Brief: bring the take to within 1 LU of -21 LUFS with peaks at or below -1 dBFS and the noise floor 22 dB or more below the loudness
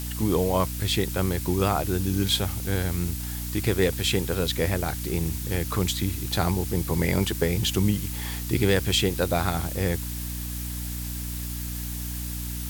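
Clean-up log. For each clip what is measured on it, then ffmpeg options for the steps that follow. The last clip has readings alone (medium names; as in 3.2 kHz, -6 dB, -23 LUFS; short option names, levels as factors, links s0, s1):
hum 60 Hz; highest harmonic 300 Hz; hum level -31 dBFS; noise floor -32 dBFS; noise floor target -48 dBFS; loudness -26.0 LUFS; peak level -9.0 dBFS; loudness target -21.0 LUFS
-> -af "bandreject=f=60:t=h:w=4,bandreject=f=120:t=h:w=4,bandreject=f=180:t=h:w=4,bandreject=f=240:t=h:w=4,bandreject=f=300:t=h:w=4"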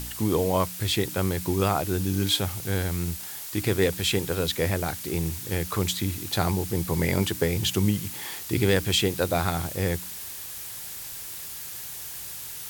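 hum not found; noise floor -38 dBFS; noise floor target -49 dBFS
-> -af "afftdn=nr=11:nf=-38"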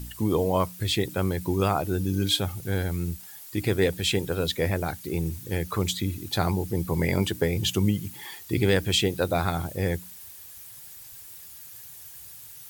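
noise floor -45 dBFS; noise floor target -49 dBFS
-> -af "afftdn=nr=6:nf=-45"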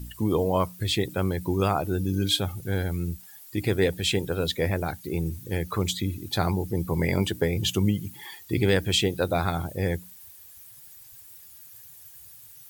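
noise floor -49 dBFS; loudness -26.5 LUFS; peak level -10.0 dBFS; loudness target -21.0 LUFS
-> -af "volume=1.88"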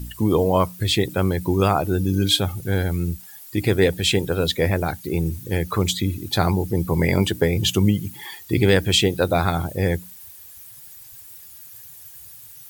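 loudness -21.0 LUFS; peak level -4.5 dBFS; noise floor -43 dBFS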